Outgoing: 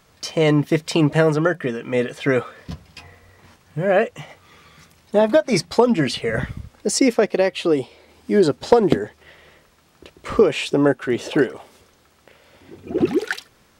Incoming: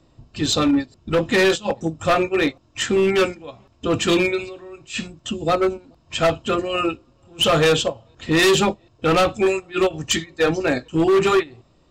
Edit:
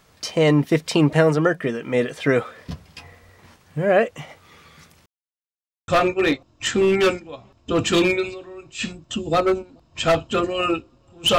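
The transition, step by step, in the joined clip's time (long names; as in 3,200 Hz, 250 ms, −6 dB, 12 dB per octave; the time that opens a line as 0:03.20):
outgoing
0:05.06–0:05.88: silence
0:05.88: continue with incoming from 0:02.03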